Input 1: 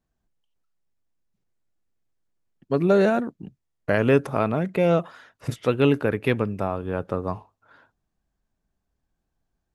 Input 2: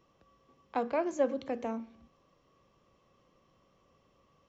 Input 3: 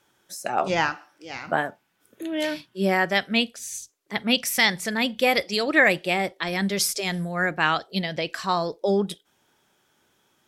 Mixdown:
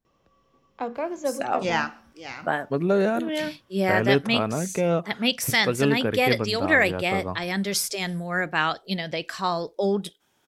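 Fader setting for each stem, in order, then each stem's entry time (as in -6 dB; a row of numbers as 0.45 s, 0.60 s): -3.0 dB, +1.5 dB, -1.5 dB; 0.00 s, 0.05 s, 0.95 s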